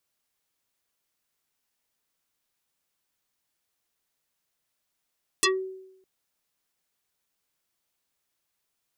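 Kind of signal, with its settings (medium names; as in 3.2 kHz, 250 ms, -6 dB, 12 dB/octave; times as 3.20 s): FM tone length 0.61 s, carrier 378 Hz, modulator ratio 4.02, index 7.6, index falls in 0.17 s exponential, decay 0.83 s, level -16.5 dB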